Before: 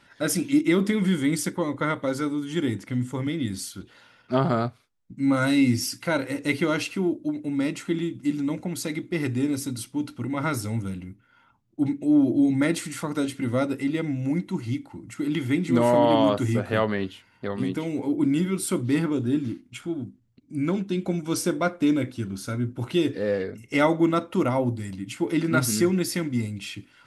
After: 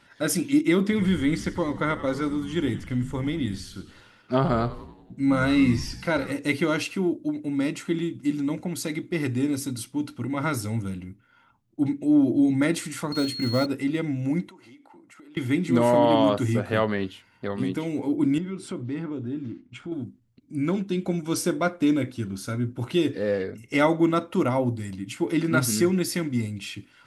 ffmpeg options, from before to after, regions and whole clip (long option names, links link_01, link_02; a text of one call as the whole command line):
ffmpeg -i in.wav -filter_complex "[0:a]asettb=1/sr,asplit=3[link_01][link_02][link_03];[link_01]atrim=end=0.834[link_04];[link_02]atrim=start=0.83:end=6.32,asetpts=PTS-STARTPTS,afade=type=in:duration=0.004:curve=qsin,afade=type=out:start_time=5.486:duration=0.004:curve=qsin,acrossover=split=5100[link_05][link_06];[link_06]acompressor=threshold=-50dB:ratio=4:attack=1:release=60[link_07];[link_05][link_07]amix=inputs=2:normalize=0,asplit=7[link_08][link_09][link_10][link_11][link_12][link_13][link_14];[link_09]adelay=93,afreqshift=-100,volume=-14dB[link_15];[link_10]adelay=186,afreqshift=-200,volume=-18.9dB[link_16];[link_11]adelay=279,afreqshift=-300,volume=-23.8dB[link_17];[link_12]adelay=372,afreqshift=-400,volume=-28.6dB[link_18];[link_13]adelay=465,afreqshift=-500,volume=-33.5dB[link_19];[link_14]adelay=558,afreqshift=-600,volume=-38.4dB[link_20];[link_08][link_15][link_16][link_17][link_18][link_19][link_20]amix=inputs=7:normalize=0,atrim=end_sample=242109[link_21];[link_03]atrim=start=6.316[link_22];[link_04][link_21]acrossfade=duration=0.004:curve1=hsin:curve2=qsin[link_23];[link_23][link_22]acrossfade=duration=0.004:curve1=qsin:curve2=hsin,asettb=1/sr,asplit=3[link_24][link_25][link_26];[link_24]atrim=end=13.124[link_27];[link_25]atrim=start=13.12:end=13.66,asetpts=PTS-STARTPTS,afade=type=in:duration=0.004:curve=qsin,afade=type=out:start_time=0.536:duration=0.004:curve=qsin,lowshelf=frequency=110:gain=4,acrusher=bits=6:mode=log:mix=0:aa=0.000001,aeval=exprs='val(0)+0.0251*sin(2*PI*4300*n/s)':channel_layout=same[link_28];[link_26]atrim=start=13.656[link_29];[link_27][link_28]acrossfade=duration=0.004:curve1=hsin:curve2=qsin[link_30];[link_30][link_29]acrossfade=duration=0.004:curve1=qsin:curve2=hsin,asettb=1/sr,asplit=3[link_31][link_32][link_33];[link_31]atrim=end=14.494[link_34];[link_32]atrim=start=14.49:end=15.37,asetpts=PTS-STARTPTS,afade=type=in:duration=0.004:curve=qsin,afade=type=out:start_time=0.876:duration=0.004:curve=qsin,highpass=520,highshelf=frequency=2300:gain=-10.5,acompressor=threshold=-46dB:ratio=8:attack=3.2:release=140:knee=1:detection=peak[link_35];[link_33]atrim=start=15.366[link_36];[link_34][link_35]acrossfade=duration=0.004:curve1=hsin:curve2=qsin[link_37];[link_37][link_36]acrossfade=duration=0.004:curve1=qsin:curve2=hsin,asettb=1/sr,asplit=3[link_38][link_39][link_40];[link_38]atrim=end=18.384[link_41];[link_39]atrim=start=18.38:end=19.92,asetpts=PTS-STARTPTS,afade=type=in:duration=0.004:curve=qsin,afade=type=out:start_time=1.536:duration=0.004:curve=qsin,lowpass=frequency=9400:width=0.5412,lowpass=frequency=9400:width=1.3066,aemphasis=mode=reproduction:type=75fm,acompressor=threshold=-34dB:ratio=2:attack=3.2:release=140:knee=1:detection=peak[link_42];[link_40]atrim=start=19.916[link_43];[link_41][link_42]acrossfade=duration=0.004:curve1=hsin:curve2=qsin[link_44];[link_44][link_43]acrossfade=duration=0.004:curve1=qsin:curve2=hsin" out.wav